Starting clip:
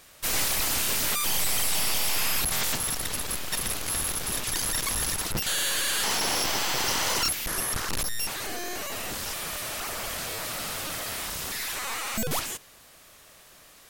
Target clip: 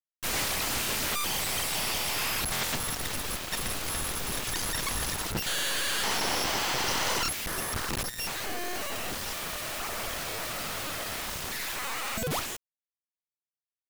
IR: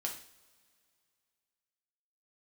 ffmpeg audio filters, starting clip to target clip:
-af "highshelf=frequency=5800:gain=-8,afftfilt=real='re*lt(hypot(re,im),0.398)':imag='im*lt(hypot(re,im),0.398)':win_size=1024:overlap=0.75,acrusher=bits=5:mix=0:aa=0.000001"

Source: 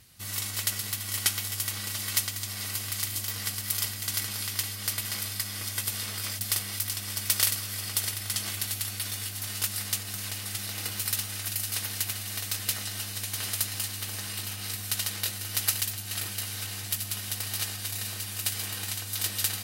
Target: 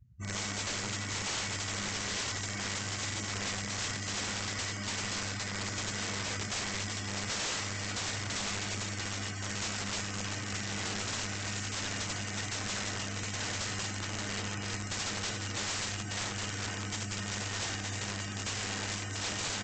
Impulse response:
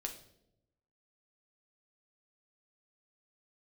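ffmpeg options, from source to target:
-filter_complex "[1:a]atrim=start_sample=2205,afade=type=out:start_time=0.38:duration=0.01,atrim=end_sample=17199,asetrate=22932,aresample=44100[link_01];[0:a][link_01]afir=irnorm=-1:irlink=0,asoftclip=type=tanh:threshold=-18.5dB,equalizer=frequency=4000:width_type=o:width=1.4:gain=-12,afftdn=noise_reduction=34:noise_floor=-47,aecho=1:1:422|844|1266|1688|2110:0.15|0.0853|0.0486|0.0277|0.0158,aresample=16000,aeval=exprs='(mod(50.1*val(0)+1,2)-1)/50.1':channel_layout=same,aresample=44100,volume=5dB"

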